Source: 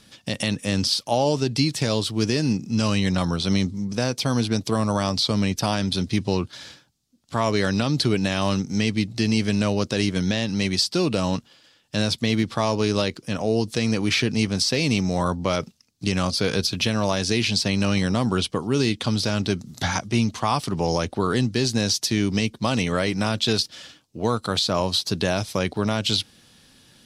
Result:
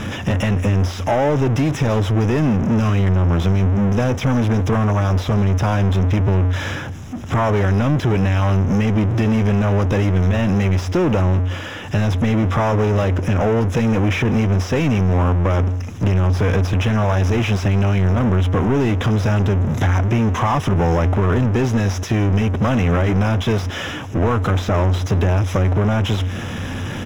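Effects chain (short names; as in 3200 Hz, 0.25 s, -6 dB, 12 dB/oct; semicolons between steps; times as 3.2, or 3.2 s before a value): bell 91 Hz +14 dB 0.26 oct; power-law curve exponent 0.35; compressor, threshold -14 dBFS, peak gain reduction 5 dB; running mean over 10 samples; echo 0.164 s -22.5 dB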